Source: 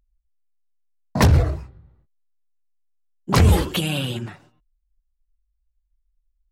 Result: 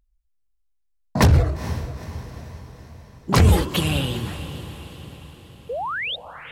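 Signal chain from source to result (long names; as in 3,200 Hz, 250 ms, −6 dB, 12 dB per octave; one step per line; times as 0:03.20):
sound drawn into the spectrogram rise, 0:05.69–0:06.16, 440–3,900 Hz −27 dBFS
feedback delay with all-pass diffusion 464 ms, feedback 53%, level −12.5 dB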